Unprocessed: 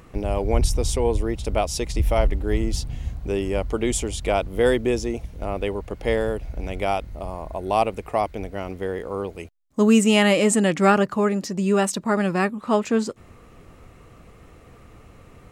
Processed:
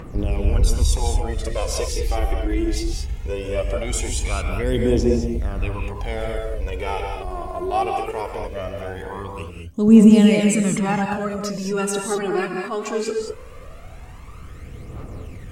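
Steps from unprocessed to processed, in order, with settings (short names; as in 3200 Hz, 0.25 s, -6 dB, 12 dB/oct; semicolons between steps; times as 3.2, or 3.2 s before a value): 9.88–12.11 low shelf 240 Hz +10.5 dB; transient shaper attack -6 dB, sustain +3 dB; compressor 1.5:1, threshold -38 dBFS, peak gain reduction 10.5 dB; phaser 0.2 Hz, delay 3 ms, feedback 72%; non-linear reverb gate 0.24 s rising, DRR 2 dB; gain +2 dB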